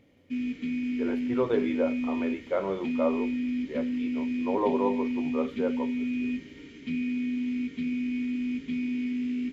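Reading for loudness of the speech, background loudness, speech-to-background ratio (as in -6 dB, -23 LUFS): -32.0 LUFS, -31.0 LUFS, -1.0 dB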